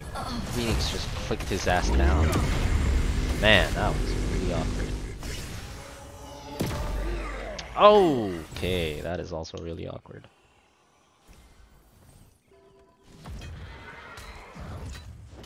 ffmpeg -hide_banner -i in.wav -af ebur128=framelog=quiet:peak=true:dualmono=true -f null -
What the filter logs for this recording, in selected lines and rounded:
Integrated loudness:
  I:         -23.1 LUFS
  Threshold: -35.4 LUFS
Loudness range:
  LRA:        20.3 LU
  Threshold: -45.0 LUFS
  LRA low:   -41.9 LUFS
  LRA high:  -21.6 LUFS
True peak:
  Peak:       -2.0 dBFS